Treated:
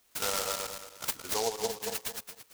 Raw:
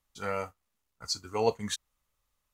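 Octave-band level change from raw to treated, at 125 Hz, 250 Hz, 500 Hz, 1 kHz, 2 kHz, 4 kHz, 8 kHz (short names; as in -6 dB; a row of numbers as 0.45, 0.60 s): -8.0, -6.5, -2.5, -0.5, +3.0, +2.0, +7.0 dB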